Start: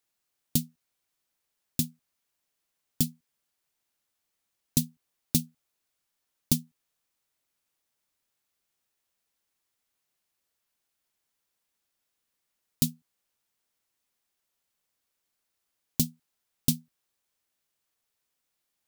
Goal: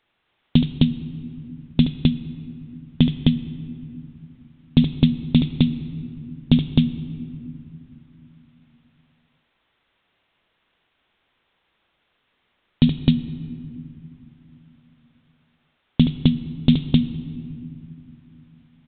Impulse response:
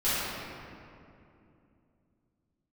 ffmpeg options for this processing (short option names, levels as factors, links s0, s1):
-filter_complex "[0:a]aecho=1:1:72.89|259.5:0.251|0.708,aresample=8000,aresample=44100,asplit=2[s0][s1];[s1]equalizer=f=600:t=o:w=0.49:g=-12[s2];[1:a]atrim=start_sample=2205[s3];[s2][s3]afir=irnorm=-1:irlink=0,volume=0.0531[s4];[s0][s4]amix=inputs=2:normalize=0,alimiter=level_in=7.08:limit=0.891:release=50:level=0:latency=1,volume=0.891"